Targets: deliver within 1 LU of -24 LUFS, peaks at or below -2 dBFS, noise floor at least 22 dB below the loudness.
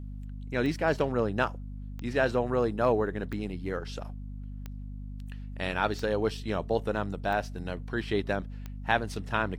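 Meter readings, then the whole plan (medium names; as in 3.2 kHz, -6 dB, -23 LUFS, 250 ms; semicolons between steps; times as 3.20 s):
clicks found 7; hum 50 Hz; highest harmonic 250 Hz; hum level -37 dBFS; loudness -30.5 LUFS; peak level -9.5 dBFS; loudness target -24.0 LUFS
-> de-click; de-hum 50 Hz, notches 5; trim +6.5 dB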